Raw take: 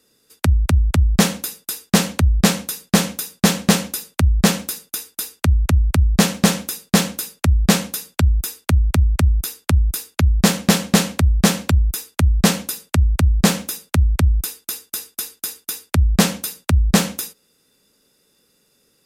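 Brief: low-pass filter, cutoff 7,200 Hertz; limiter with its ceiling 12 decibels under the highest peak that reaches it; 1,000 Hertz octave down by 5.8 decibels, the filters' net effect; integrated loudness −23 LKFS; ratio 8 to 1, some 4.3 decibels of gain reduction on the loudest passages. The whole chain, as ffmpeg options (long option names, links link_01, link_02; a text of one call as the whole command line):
ffmpeg -i in.wav -af "lowpass=7200,equalizer=frequency=1000:width_type=o:gain=-8,acompressor=threshold=-14dB:ratio=8,volume=4.5dB,alimiter=limit=-12.5dB:level=0:latency=1" out.wav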